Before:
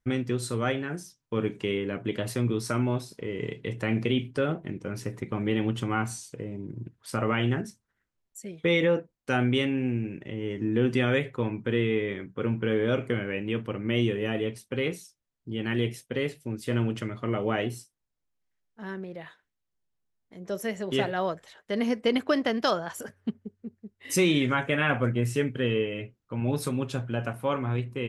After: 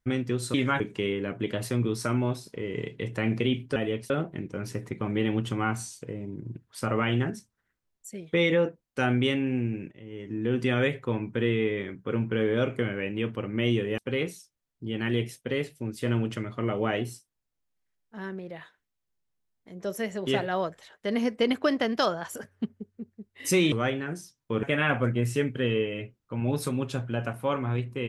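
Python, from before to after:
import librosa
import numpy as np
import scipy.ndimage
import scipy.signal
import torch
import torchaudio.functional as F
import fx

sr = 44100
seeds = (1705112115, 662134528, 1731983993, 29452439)

y = fx.edit(x, sr, fx.swap(start_s=0.54, length_s=0.91, other_s=24.37, other_length_s=0.26),
    fx.fade_in_from(start_s=10.22, length_s=0.9, floor_db=-14.5),
    fx.move(start_s=14.29, length_s=0.34, to_s=4.41), tone=tone)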